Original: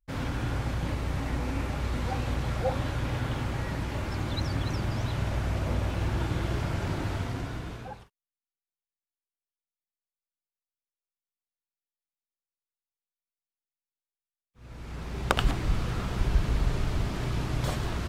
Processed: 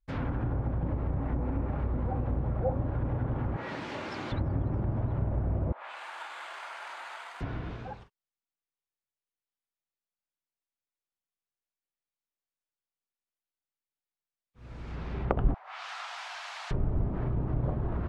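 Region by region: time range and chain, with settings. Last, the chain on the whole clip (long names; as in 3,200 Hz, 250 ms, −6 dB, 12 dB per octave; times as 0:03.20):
0:03.56–0:04.32: high-pass filter 250 Hz + high-shelf EQ 4,700 Hz +11 dB
0:05.72–0:07.41: high-pass filter 830 Hz 24 dB per octave + bad sample-rate conversion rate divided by 4×, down filtered, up hold
0:15.54–0:16.71: elliptic high-pass filter 730 Hz, stop band 60 dB + parametric band 9,500 Hz +8.5 dB 2.7 octaves
whole clip: low-pass filter 3,200 Hz 6 dB per octave; treble cut that deepens with the level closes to 720 Hz, closed at −25.5 dBFS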